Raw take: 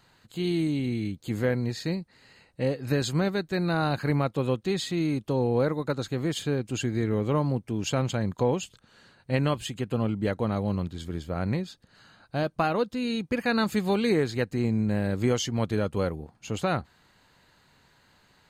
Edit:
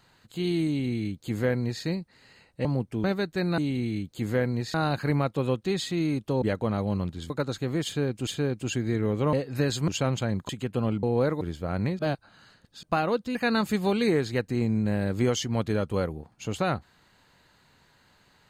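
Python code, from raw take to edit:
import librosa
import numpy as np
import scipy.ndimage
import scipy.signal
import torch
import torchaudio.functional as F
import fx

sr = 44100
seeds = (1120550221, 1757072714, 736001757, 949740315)

y = fx.edit(x, sr, fx.duplicate(start_s=0.67, length_s=1.16, to_s=3.74),
    fx.swap(start_s=2.65, length_s=0.55, other_s=7.41, other_length_s=0.39),
    fx.swap(start_s=5.42, length_s=0.38, other_s=10.2, other_length_s=0.88),
    fx.repeat(start_s=6.35, length_s=0.42, count=2),
    fx.cut(start_s=8.41, length_s=1.25),
    fx.reverse_span(start_s=11.66, length_s=0.84),
    fx.cut(start_s=13.02, length_s=0.36), tone=tone)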